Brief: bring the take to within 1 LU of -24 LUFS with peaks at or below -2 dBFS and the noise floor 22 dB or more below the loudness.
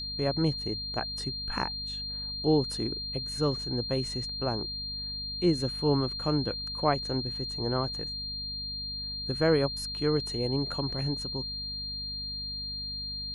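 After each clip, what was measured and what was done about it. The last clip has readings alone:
hum 50 Hz; harmonics up to 250 Hz; hum level -42 dBFS; steady tone 4200 Hz; tone level -34 dBFS; loudness -30.5 LUFS; peak -12.0 dBFS; loudness target -24.0 LUFS
-> de-hum 50 Hz, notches 5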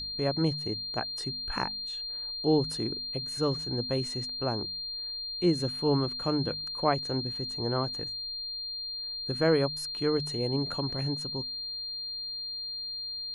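hum none; steady tone 4200 Hz; tone level -34 dBFS
-> notch 4200 Hz, Q 30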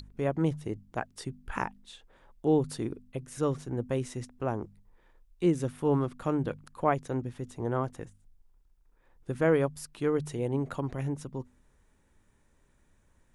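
steady tone none; loudness -32.0 LUFS; peak -12.0 dBFS; loudness target -24.0 LUFS
-> gain +8 dB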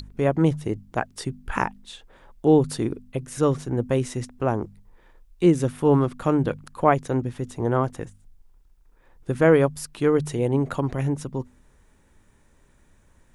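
loudness -24.0 LUFS; peak -4.0 dBFS; noise floor -58 dBFS

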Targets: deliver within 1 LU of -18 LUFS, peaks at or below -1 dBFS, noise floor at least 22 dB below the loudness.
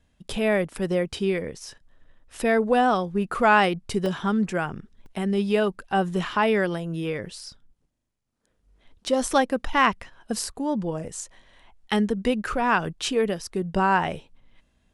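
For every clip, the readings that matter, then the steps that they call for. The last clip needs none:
dropouts 2; longest dropout 1.6 ms; loudness -24.5 LUFS; peak -6.0 dBFS; loudness target -18.0 LUFS
-> interpolate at 4.06/5.06, 1.6 ms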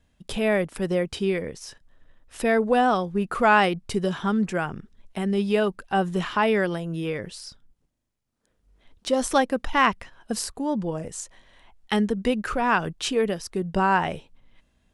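dropouts 0; loudness -24.5 LUFS; peak -6.0 dBFS; loudness target -18.0 LUFS
-> gain +6.5 dB; limiter -1 dBFS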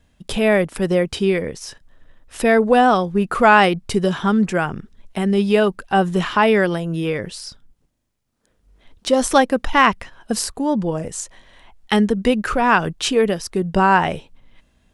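loudness -18.0 LUFS; peak -1.0 dBFS; noise floor -63 dBFS

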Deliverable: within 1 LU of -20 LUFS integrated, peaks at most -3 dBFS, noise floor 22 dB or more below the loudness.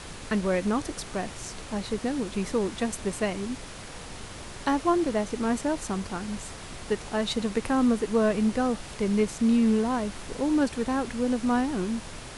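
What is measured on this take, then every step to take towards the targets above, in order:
noise floor -41 dBFS; noise floor target -50 dBFS; loudness -27.5 LUFS; peak -13.0 dBFS; loudness target -20.0 LUFS
-> noise print and reduce 9 dB; gain +7.5 dB

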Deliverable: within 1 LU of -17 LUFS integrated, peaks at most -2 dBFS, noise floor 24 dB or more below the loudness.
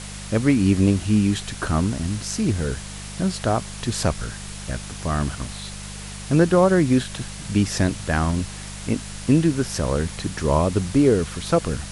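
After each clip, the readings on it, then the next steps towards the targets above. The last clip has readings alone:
hum 50 Hz; harmonics up to 200 Hz; hum level -35 dBFS; noise floor -35 dBFS; noise floor target -46 dBFS; loudness -22.0 LUFS; peak -3.5 dBFS; loudness target -17.0 LUFS
-> de-hum 50 Hz, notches 4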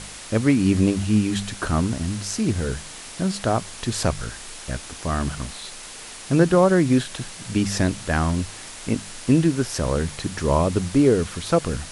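hum none; noise floor -39 dBFS; noise floor target -47 dBFS
-> denoiser 8 dB, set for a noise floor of -39 dBFS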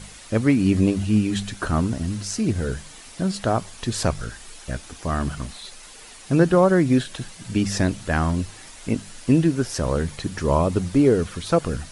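noise floor -43 dBFS; noise floor target -47 dBFS
-> denoiser 6 dB, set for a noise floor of -43 dBFS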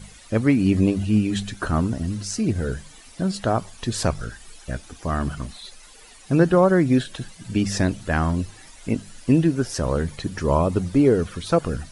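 noise floor -47 dBFS; loudness -22.5 LUFS; peak -3.5 dBFS; loudness target -17.0 LUFS
-> gain +5.5 dB; limiter -2 dBFS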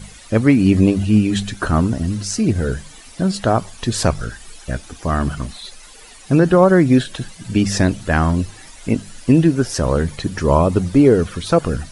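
loudness -17.0 LUFS; peak -2.0 dBFS; noise floor -41 dBFS

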